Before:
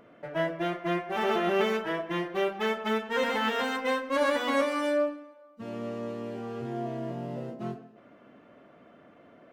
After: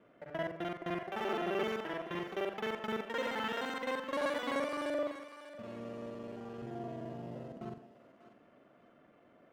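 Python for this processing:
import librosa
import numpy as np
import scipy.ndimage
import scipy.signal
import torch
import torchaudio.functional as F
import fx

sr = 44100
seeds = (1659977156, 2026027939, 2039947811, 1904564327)

y = fx.local_reverse(x, sr, ms=43.0)
y = fx.echo_thinned(y, sr, ms=593, feedback_pct=29, hz=730.0, wet_db=-11.5)
y = F.gain(torch.from_numpy(y), -8.0).numpy()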